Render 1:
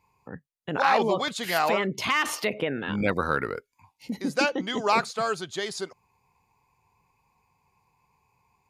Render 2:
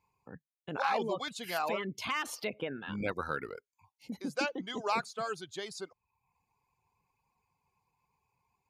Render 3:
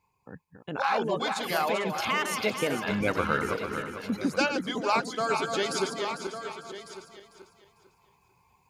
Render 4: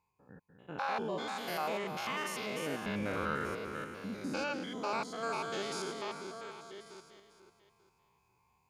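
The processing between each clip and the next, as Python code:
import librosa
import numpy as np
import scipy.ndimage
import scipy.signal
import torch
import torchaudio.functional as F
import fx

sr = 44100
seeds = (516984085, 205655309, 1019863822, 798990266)

y1 = fx.dereverb_blind(x, sr, rt60_s=0.63)
y1 = fx.notch(y1, sr, hz=1900.0, q=12.0)
y1 = y1 * librosa.db_to_amplitude(-8.5)
y2 = fx.reverse_delay_fb(y1, sr, ms=224, feedback_pct=55, wet_db=-7.0)
y2 = y2 + 10.0 ** (-15.5 / 20.0) * np.pad(y2, (int(1151 * sr / 1000.0), 0))[:len(y2)]
y2 = fx.rider(y2, sr, range_db=5, speed_s=0.5)
y2 = y2 * librosa.db_to_amplitude(7.0)
y3 = fx.spec_steps(y2, sr, hold_ms=100)
y3 = y3 * librosa.db_to_amplitude(-6.0)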